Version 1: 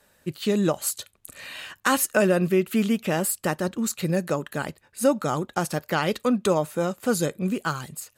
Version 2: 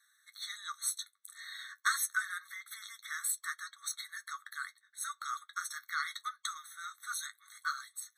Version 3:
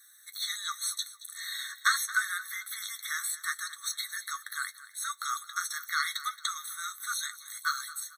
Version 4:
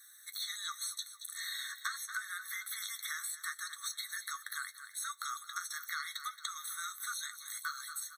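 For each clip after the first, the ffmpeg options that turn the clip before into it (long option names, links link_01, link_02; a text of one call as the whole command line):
ffmpeg -i in.wav -af "equalizer=frequency=4600:width=0.46:gain=5.5,flanger=delay=8.7:depth=2.1:regen=-48:speed=0.26:shape=sinusoidal,afftfilt=real='re*eq(mod(floor(b*sr/1024/1100),2),1)':imag='im*eq(mod(floor(b*sr/1024/1100),2),1)':win_size=1024:overlap=0.75,volume=-4dB" out.wav
ffmpeg -i in.wav -filter_complex "[0:a]aemphasis=mode=production:type=75kf,acrossover=split=4800[link_01][link_02];[link_02]acompressor=threshold=-40dB:ratio=4:attack=1:release=60[link_03];[link_01][link_03]amix=inputs=2:normalize=0,aecho=1:1:224|448|672:0.15|0.0524|0.0183,volume=3.5dB" out.wav
ffmpeg -i in.wav -af "acompressor=threshold=-37dB:ratio=5" out.wav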